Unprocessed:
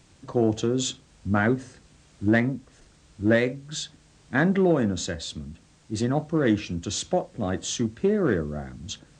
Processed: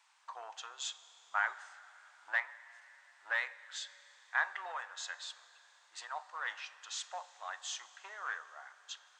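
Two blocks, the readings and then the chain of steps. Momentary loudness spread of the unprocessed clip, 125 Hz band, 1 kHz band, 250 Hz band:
13 LU, below −40 dB, −7.0 dB, below −40 dB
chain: elliptic high-pass filter 900 Hz, stop band 70 dB
high-shelf EQ 2,100 Hz −12 dB
four-comb reverb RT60 3.5 s, combs from 30 ms, DRR 15.5 dB

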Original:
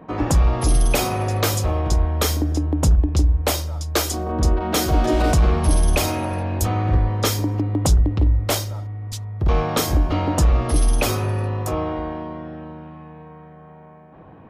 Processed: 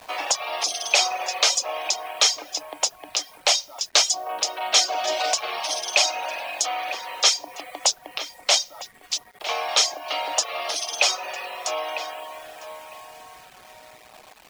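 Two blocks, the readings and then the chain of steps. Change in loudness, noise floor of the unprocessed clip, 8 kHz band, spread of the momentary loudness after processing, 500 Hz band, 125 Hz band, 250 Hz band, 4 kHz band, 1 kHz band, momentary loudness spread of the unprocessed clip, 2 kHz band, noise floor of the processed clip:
−2.0 dB, −44 dBFS, +5.5 dB, 14 LU, −5.5 dB, below −40 dB, −26.0 dB, +8.5 dB, −1.0 dB, 12 LU, +4.0 dB, −50 dBFS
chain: high shelf with overshoot 2,000 Hz +9 dB, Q 1.5
on a send: feedback echo with a low-pass in the loop 953 ms, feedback 17%, low-pass 2,600 Hz, level −13 dB
on the sum: dynamic equaliser 2,700 Hz, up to −6 dB, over −30 dBFS, Q 0.73
Chebyshev band-pass filter 660–6,200 Hz, order 3
bit reduction 8 bits
reverb reduction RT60 0.59 s
level +3 dB

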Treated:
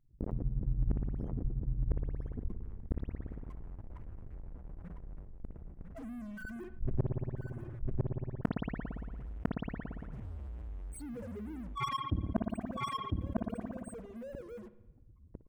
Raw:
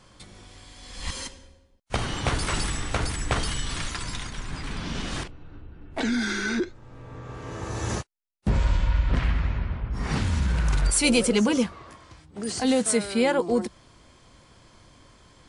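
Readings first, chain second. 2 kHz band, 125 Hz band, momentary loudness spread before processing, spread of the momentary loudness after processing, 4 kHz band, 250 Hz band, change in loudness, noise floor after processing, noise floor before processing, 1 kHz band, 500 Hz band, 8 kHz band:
−19.5 dB, −8.0 dB, 16 LU, 15 LU, −21.0 dB, −12.0 dB, −13.0 dB, −57 dBFS, −57 dBFS, −9.0 dB, −16.0 dB, −29.0 dB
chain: spectral peaks only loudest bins 1
in parallel at −10.5 dB: fuzz pedal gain 51 dB, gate −57 dBFS
on the sum: gate with flip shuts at −23 dBFS, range −33 dB
power curve on the samples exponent 2
drawn EQ curve 2,000 Hz 0 dB, 4,200 Hz −12 dB, 9,100 Hz −2 dB
on a send: single-tap delay 1,002 ms −5.5 dB
on the sum: spring reverb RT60 1 s, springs 57 ms, chirp 25 ms, DRR 14 dB
envelope flattener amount 70%
level +5.5 dB

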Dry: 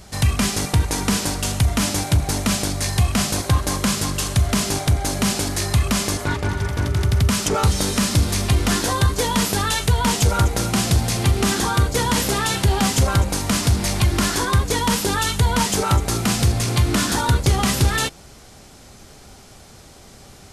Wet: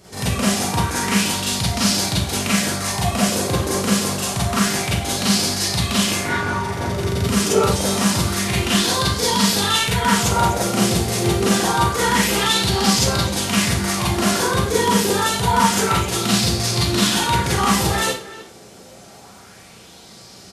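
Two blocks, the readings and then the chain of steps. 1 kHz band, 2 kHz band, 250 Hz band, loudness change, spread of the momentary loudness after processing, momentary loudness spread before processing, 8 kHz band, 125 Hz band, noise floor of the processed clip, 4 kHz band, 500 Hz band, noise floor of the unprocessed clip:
+4.0 dB, +3.0 dB, +2.5 dB, +1.5 dB, 5 LU, 3 LU, +2.0 dB, −3.5 dB, −43 dBFS, +4.0 dB, +4.0 dB, −45 dBFS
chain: high-pass filter 90 Hz
far-end echo of a speakerphone 310 ms, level −15 dB
four-comb reverb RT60 0.35 s, combs from 33 ms, DRR −7 dB
auto-filter bell 0.27 Hz 400–4,800 Hz +8 dB
level −6.5 dB

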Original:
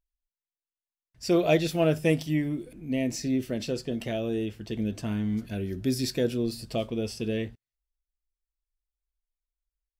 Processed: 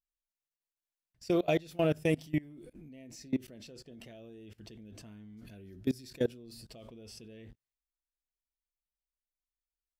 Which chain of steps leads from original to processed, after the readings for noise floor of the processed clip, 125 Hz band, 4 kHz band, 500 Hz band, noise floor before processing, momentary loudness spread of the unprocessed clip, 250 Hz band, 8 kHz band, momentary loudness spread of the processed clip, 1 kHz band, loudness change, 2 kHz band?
below −85 dBFS, −9.0 dB, −11.0 dB, −7.0 dB, below −85 dBFS, 9 LU, −8.5 dB, −13.0 dB, 22 LU, −6.5 dB, −4.0 dB, −7.5 dB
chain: output level in coarse steps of 24 dB
level −2 dB

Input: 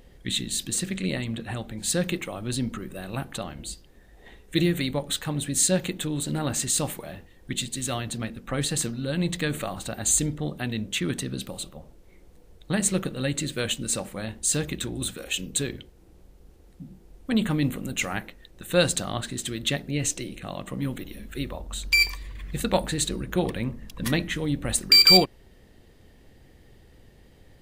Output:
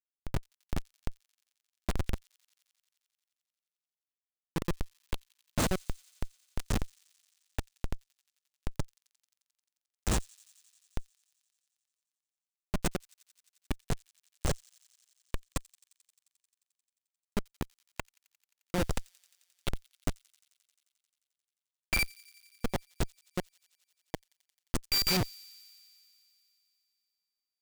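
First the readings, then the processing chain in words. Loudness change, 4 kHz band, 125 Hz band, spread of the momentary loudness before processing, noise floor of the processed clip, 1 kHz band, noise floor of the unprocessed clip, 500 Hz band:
−11.0 dB, −15.0 dB, −9.5 dB, 13 LU, below −85 dBFS, −8.5 dB, −54 dBFS, −12.5 dB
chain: in parallel at +2 dB: downward compressor 16 to 1, threshold −38 dBFS, peak gain reduction 27.5 dB
on the sum: comparator with hysteresis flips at −14.5 dBFS
delay with a high-pass on its return 88 ms, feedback 82%, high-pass 3,900 Hz, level −21 dB

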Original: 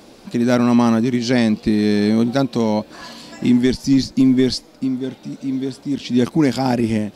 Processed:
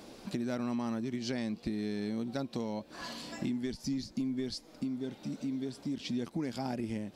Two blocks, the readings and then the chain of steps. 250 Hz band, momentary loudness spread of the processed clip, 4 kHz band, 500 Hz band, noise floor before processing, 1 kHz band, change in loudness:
−18.5 dB, 5 LU, −15.5 dB, −19.0 dB, −45 dBFS, −18.5 dB, −18.5 dB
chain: downward compressor 5 to 1, threshold −27 dBFS, peak gain reduction 15 dB
level −6.5 dB

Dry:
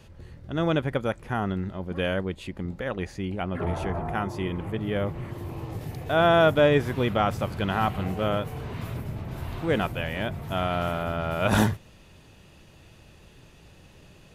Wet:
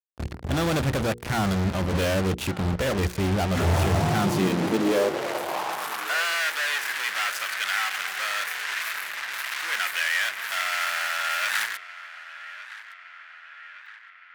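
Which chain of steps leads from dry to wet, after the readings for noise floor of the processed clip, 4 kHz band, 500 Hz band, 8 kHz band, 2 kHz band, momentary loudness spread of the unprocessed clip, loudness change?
−47 dBFS, +7.0 dB, −3.0 dB, can't be measured, +7.0 dB, 14 LU, +1.5 dB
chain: fuzz pedal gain 46 dB, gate −40 dBFS
mains-hum notches 60/120/180/240/300/360/420/480 Hz
high-pass filter sweep 62 Hz → 1,700 Hz, 0:03.59–0:06.26
on a send: feedback echo with a band-pass in the loop 1,164 ms, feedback 64%, band-pass 1,700 Hz, level −15 dB
on the sum: level −9 dB

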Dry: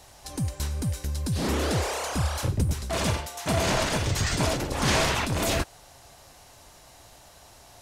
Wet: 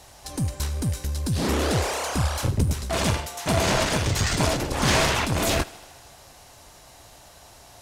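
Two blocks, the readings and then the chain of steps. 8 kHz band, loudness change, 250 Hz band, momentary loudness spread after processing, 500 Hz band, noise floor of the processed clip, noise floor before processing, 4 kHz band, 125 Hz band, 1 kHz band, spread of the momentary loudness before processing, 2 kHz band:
+3.0 dB, +2.5 dB, +2.5 dB, 7 LU, +2.5 dB, −50 dBFS, −52 dBFS, +3.0 dB, +2.5 dB, +3.0 dB, 7 LU, +3.0 dB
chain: harmonic generator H 6 −24 dB, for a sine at −10 dBFS
feedback echo with a high-pass in the loop 78 ms, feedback 74%, high-pass 170 Hz, level −21.5 dB
level +2.5 dB

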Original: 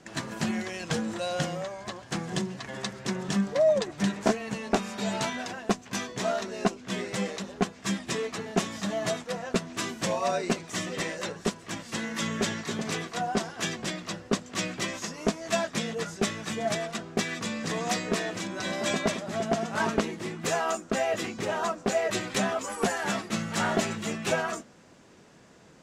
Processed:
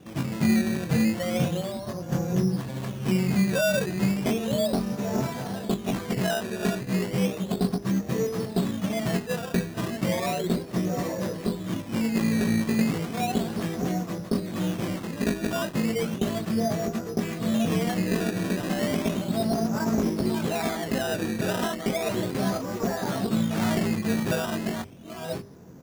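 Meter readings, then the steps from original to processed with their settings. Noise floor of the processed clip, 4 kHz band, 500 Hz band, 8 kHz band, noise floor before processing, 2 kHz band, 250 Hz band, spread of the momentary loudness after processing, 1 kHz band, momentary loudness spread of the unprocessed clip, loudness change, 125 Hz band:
−38 dBFS, −1.5 dB, +1.0 dB, −2.5 dB, −51 dBFS, −1.5 dB, +7.0 dB, 6 LU, −1.5 dB, 6 LU, +3.0 dB, +8.0 dB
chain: delay that plays each chunk backwards 591 ms, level −8 dB
high-pass filter 82 Hz
mains-hum notches 50/100/150/200/250/300/350/400 Hz
double-tracking delay 22 ms −6 dB
brickwall limiter −19 dBFS, peak gain reduction 9 dB
reversed playback
upward compression, threshold −49 dBFS
reversed playback
spectral tilt −4.5 dB per octave
sample-and-hold swept by an LFO 14×, swing 100% 0.34 Hz
level −2 dB

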